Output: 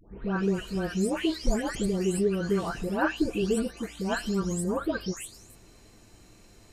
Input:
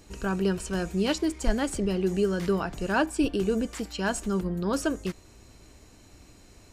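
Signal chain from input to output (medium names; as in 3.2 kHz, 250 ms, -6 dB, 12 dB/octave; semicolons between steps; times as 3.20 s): delay that grows with frequency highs late, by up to 436 ms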